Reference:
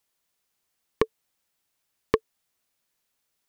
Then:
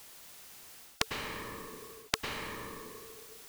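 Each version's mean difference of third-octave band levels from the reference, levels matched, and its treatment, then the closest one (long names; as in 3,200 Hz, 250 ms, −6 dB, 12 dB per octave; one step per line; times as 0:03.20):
12.0 dB: reversed playback
downward compressor, threshold −26 dBFS, peak gain reduction 10 dB
reversed playback
dense smooth reverb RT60 1.5 s, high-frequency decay 0.9×, pre-delay 90 ms, DRR 10 dB
every bin compressed towards the loudest bin 10 to 1
level +11.5 dB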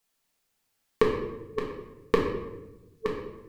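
8.0 dB: delay that plays each chunk backwards 650 ms, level −8 dB
flanger 1.2 Hz, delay 6.6 ms, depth 4.7 ms, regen −47%
rectangular room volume 450 cubic metres, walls mixed, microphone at 1.6 metres
level +2.5 dB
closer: second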